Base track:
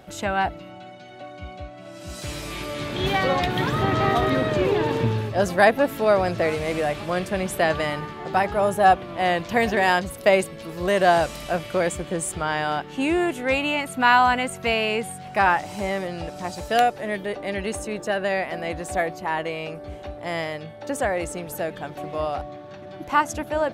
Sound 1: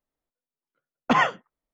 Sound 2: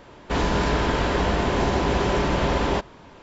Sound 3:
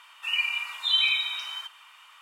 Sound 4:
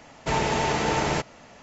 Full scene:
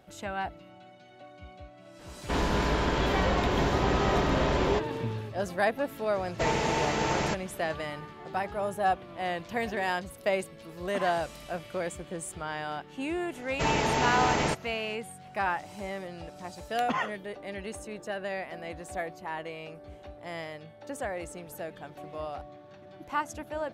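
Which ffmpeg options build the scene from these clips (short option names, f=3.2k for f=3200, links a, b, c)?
-filter_complex "[4:a]asplit=2[a][b];[1:a]asplit=2[c][d];[0:a]volume=-10.5dB[e];[2:a]atrim=end=3.22,asetpts=PTS-STARTPTS,volume=-5dB,afade=t=in:d=0.004:c=hsin,afade=t=out:st=3.216:d=0.004:c=hsin,adelay=1990[f];[a]atrim=end=1.62,asetpts=PTS-STARTPTS,volume=-4dB,afade=t=in:d=0.004:c=hsin,afade=t=out:st=1.616:d=0.004:c=hsin,adelay=6130[g];[c]atrim=end=1.73,asetpts=PTS-STARTPTS,volume=-17.5dB,afade=t=in:d=0.004:c=hsin,afade=t=out:st=1.726:d=0.004:c=hsin,adelay=9850[h];[b]atrim=end=1.62,asetpts=PTS-STARTPTS,volume=-2.5dB,afade=t=in:d=0.004:c=hsin,afade=t=out:st=1.616:d=0.004:c=hsin,adelay=13330[i];[d]atrim=end=1.73,asetpts=PTS-STARTPTS,volume=-10.5dB,afade=t=in:d=0.004:c=hsin,afade=t=out:st=1.726:d=0.004:c=hsin,adelay=15790[j];[e][f][g][h][i][j]amix=inputs=6:normalize=0"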